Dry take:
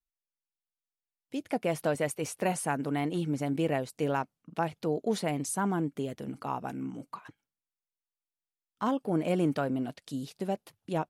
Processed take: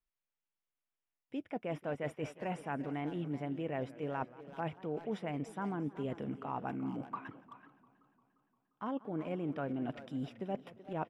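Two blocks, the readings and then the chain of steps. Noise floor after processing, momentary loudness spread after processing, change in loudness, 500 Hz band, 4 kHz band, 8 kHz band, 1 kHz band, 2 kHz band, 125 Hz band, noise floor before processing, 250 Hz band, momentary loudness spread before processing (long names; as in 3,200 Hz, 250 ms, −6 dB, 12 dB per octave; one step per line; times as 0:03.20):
below −85 dBFS, 6 LU, −7.5 dB, −8.0 dB, −11.5 dB, below −20 dB, −7.0 dB, −8.0 dB, −7.0 dB, below −85 dBFS, −7.0 dB, 10 LU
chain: reversed playback
downward compressor 6 to 1, threshold −37 dBFS, peak gain reduction 14 dB
reversed playback
Savitzky-Golay smoothing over 25 samples
far-end echo of a speakerphone 380 ms, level −12 dB
feedback echo with a swinging delay time 175 ms, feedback 70%, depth 205 cents, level −20 dB
level +2 dB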